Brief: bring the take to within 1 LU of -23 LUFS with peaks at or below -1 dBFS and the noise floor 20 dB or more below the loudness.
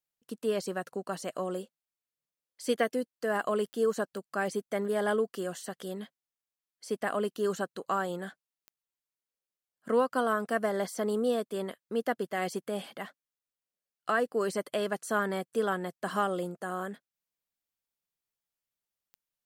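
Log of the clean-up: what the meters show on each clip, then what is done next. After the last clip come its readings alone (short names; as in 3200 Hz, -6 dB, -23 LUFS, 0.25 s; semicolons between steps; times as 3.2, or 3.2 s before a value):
clicks 4; loudness -32.0 LUFS; peak -15.0 dBFS; loudness target -23.0 LUFS
-> de-click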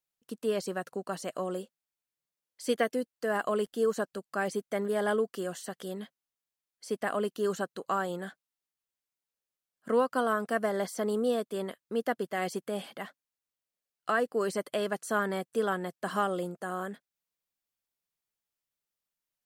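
clicks 0; loudness -32.0 LUFS; peak -15.0 dBFS; loudness target -23.0 LUFS
-> gain +9 dB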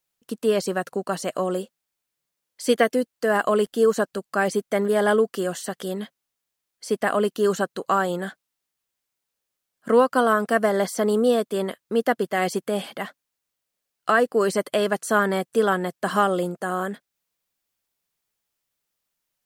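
loudness -23.0 LUFS; peak -6.0 dBFS; noise floor -82 dBFS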